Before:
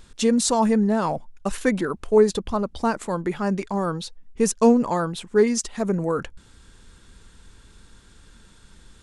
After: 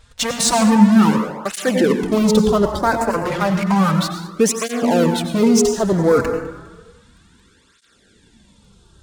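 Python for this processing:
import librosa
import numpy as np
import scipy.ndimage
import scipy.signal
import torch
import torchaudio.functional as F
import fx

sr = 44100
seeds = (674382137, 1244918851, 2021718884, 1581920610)

p1 = fx.high_shelf(x, sr, hz=8200.0, db=-7.5)
p2 = fx.fuzz(p1, sr, gain_db=31.0, gate_db=-38.0)
p3 = p1 + (p2 * 10.0 ** (-7.0 / 20.0))
p4 = fx.filter_lfo_notch(p3, sr, shape='saw_up', hz=0.31, low_hz=290.0, high_hz=3800.0, q=1.4)
p5 = p4 + fx.echo_feedback(p4, sr, ms=204, feedback_pct=38, wet_db=-20.0, dry=0)
p6 = fx.rev_plate(p5, sr, seeds[0], rt60_s=1.2, hf_ratio=0.4, predelay_ms=80, drr_db=5.5)
p7 = fx.flanger_cancel(p6, sr, hz=0.32, depth_ms=5.6)
y = p7 * 10.0 ** (4.5 / 20.0)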